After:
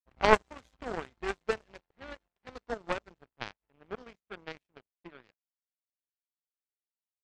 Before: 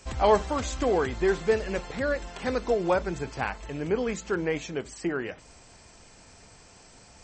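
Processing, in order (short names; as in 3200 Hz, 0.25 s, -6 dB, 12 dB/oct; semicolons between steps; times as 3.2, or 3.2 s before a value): low-pass opened by the level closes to 1100 Hz, open at -20 dBFS; power-law curve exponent 3; gain +7 dB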